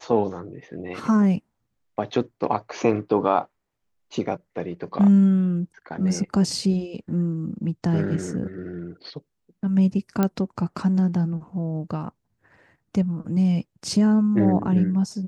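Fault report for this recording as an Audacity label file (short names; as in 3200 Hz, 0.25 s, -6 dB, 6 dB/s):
10.230000	10.230000	pop -9 dBFS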